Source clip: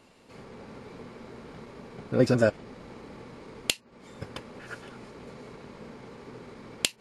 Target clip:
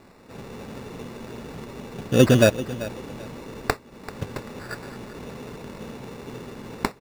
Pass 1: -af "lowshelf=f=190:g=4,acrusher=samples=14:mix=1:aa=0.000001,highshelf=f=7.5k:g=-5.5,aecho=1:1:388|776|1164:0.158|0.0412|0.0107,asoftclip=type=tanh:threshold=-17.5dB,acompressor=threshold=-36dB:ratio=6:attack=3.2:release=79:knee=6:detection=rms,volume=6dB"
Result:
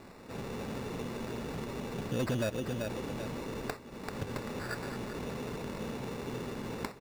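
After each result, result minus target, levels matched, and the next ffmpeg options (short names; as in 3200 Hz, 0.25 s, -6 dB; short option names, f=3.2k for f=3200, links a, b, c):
compressor: peak gain reduction +15 dB; soft clip: distortion +16 dB
-af "lowshelf=f=190:g=4,acrusher=samples=14:mix=1:aa=0.000001,highshelf=f=7.5k:g=-5.5,aecho=1:1:388|776|1164:0.158|0.0412|0.0107,asoftclip=type=tanh:threshold=-17.5dB,volume=6dB"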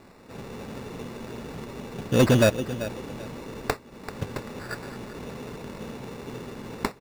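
soft clip: distortion +16 dB
-af "lowshelf=f=190:g=4,acrusher=samples=14:mix=1:aa=0.000001,highshelf=f=7.5k:g=-5.5,aecho=1:1:388|776|1164:0.158|0.0412|0.0107,asoftclip=type=tanh:threshold=-6dB,volume=6dB"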